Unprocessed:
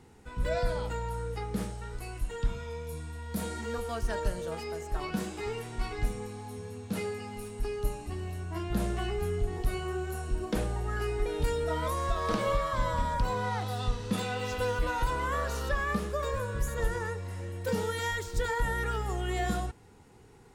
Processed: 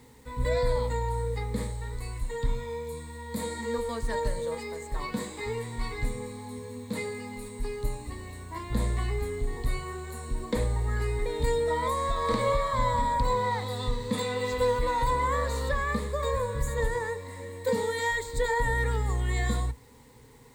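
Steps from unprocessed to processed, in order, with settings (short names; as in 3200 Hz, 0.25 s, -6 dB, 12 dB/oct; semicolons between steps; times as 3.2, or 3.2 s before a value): ripple EQ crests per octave 1, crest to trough 13 dB; bit-crush 10-bit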